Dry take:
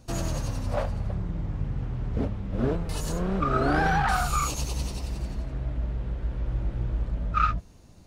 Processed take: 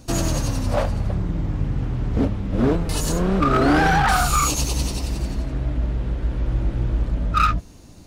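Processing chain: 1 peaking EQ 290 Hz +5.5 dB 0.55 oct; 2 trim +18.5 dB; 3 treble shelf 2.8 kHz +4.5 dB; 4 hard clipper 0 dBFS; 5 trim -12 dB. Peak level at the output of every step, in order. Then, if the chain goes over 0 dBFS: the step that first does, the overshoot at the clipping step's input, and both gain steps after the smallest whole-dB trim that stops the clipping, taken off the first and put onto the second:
-10.0 dBFS, +8.5 dBFS, +9.0 dBFS, 0.0 dBFS, -12.0 dBFS; step 2, 9.0 dB; step 2 +9.5 dB, step 5 -3 dB

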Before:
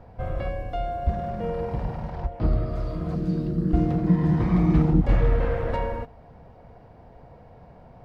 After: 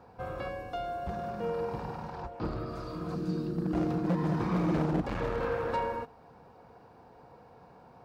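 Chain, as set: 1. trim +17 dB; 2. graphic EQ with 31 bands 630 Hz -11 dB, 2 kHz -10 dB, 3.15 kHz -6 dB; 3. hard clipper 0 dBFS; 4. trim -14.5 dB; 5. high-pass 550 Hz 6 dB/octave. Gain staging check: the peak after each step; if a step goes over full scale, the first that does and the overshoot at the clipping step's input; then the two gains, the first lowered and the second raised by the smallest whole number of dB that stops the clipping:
+8.0 dBFS, +8.0 dBFS, 0.0 dBFS, -14.5 dBFS, -16.5 dBFS; step 1, 8.0 dB; step 1 +9 dB, step 4 -6.5 dB

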